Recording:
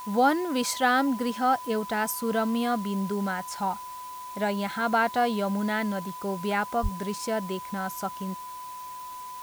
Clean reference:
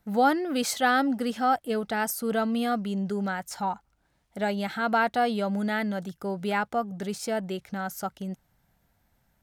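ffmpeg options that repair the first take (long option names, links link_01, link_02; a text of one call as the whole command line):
ffmpeg -i in.wav -filter_complex "[0:a]bandreject=frequency=1000:width=30,asplit=3[link_01][link_02][link_03];[link_01]afade=type=out:start_time=6.82:duration=0.02[link_04];[link_02]highpass=frequency=140:width=0.5412,highpass=frequency=140:width=1.3066,afade=type=in:start_time=6.82:duration=0.02,afade=type=out:start_time=6.94:duration=0.02[link_05];[link_03]afade=type=in:start_time=6.94:duration=0.02[link_06];[link_04][link_05][link_06]amix=inputs=3:normalize=0,afwtdn=0.0035" out.wav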